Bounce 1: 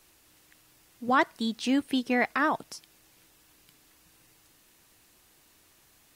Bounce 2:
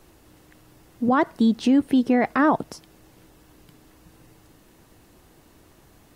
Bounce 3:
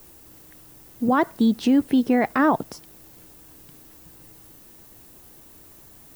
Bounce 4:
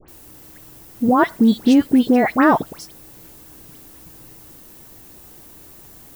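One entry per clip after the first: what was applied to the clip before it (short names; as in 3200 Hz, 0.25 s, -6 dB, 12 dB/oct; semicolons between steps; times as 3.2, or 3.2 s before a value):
tilt shelf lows +8 dB, about 1200 Hz; notch 2400 Hz, Q 27; limiter -19 dBFS, peak gain reduction 8 dB; gain +7.5 dB
added noise violet -50 dBFS
dispersion highs, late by 84 ms, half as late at 1800 Hz; gain +5 dB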